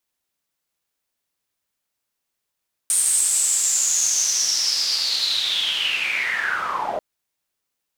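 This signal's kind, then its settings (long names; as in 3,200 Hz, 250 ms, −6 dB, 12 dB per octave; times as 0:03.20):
filter sweep on noise pink, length 4.09 s bandpass, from 8,900 Hz, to 580 Hz, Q 9.2, linear, gain ramp −7 dB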